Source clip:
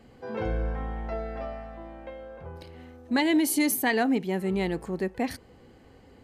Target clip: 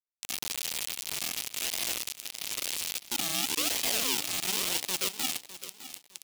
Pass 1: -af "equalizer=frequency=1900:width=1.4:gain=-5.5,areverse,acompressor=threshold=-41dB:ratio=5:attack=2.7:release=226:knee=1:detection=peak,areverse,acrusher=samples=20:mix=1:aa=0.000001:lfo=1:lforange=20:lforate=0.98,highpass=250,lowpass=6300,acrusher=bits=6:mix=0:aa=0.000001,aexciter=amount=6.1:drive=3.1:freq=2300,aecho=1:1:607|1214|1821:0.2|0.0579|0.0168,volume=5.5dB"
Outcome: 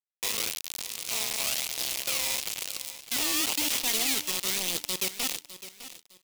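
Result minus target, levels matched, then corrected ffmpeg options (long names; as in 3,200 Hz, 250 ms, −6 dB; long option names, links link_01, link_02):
sample-and-hold swept by an LFO: distortion −11 dB
-af "equalizer=frequency=1900:width=1.4:gain=-5.5,areverse,acompressor=threshold=-41dB:ratio=5:attack=2.7:release=226:knee=1:detection=peak,areverse,acrusher=samples=61:mix=1:aa=0.000001:lfo=1:lforange=61:lforate=0.98,highpass=250,lowpass=6300,acrusher=bits=6:mix=0:aa=0.000001,aexciter=amount=6.1:drive=3.1:freq=2300,aecho=1:1:607|1214|1821:0.2|0.0579|0.0168,volume=5.5dB"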